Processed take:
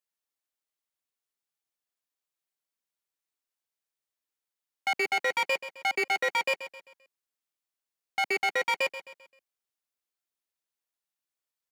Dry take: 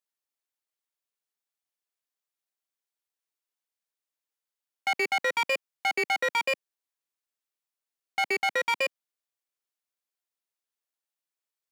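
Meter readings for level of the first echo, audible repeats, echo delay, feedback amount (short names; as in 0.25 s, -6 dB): -13.0 dB, 3, 0.131 s, 41%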